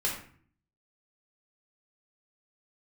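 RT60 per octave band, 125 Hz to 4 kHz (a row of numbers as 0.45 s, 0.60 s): 0.80 s, 0.75 s, 0.50 s, 0.50 s, 0.50 s, 0.35 s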